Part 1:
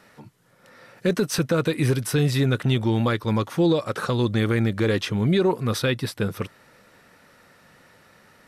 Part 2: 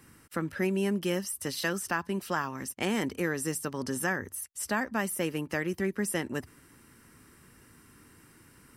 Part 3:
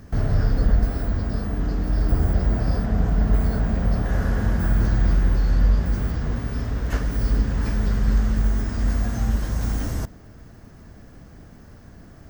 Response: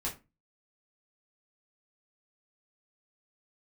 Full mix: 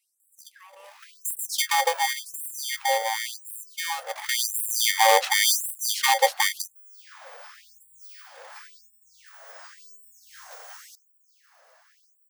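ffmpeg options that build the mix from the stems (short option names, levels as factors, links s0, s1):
-filter_complex "[0:a]lowshelf=f=250:t=q:w=1.5:g=10,aeval=exprs='val(0)*sgn(sin(2*PI*670*n/s))':c=same,adelay=200,volume=2.51,afade=t=out:st=1.51:d=0.61:silence=0.334965,afade=t=in:st=4.09:d=0.39:silence=0.298538[s0];[1:a]equalizer=f=360:t=o:w=1.1:g=14.5,asoftclip=type=tanh:threshold=0.211,volume=0.224[s1];[2:a]adelay=900,volume=0.75[s2];[s1][s2]amix=inputs=2:normalize=0,equalizer=f=190:t=o:w=1.6:g=10,acompressor=threshold=0.0708:ratio=6,volume=1[s3];[s0][s3]amix=inputs=2:normalize=0,afftfilt=real='re*gte(b*sr/1024,450*pow(7700/450,0.5+0.5*sin(2*PI*0.92*pts/sr)))':imag='im*gte(b*sr/1024,450*pow(7700/450,0.5+0.5*sin(2*PI*0.92*pts/sr)))':win_size=1024:overlap=0.75"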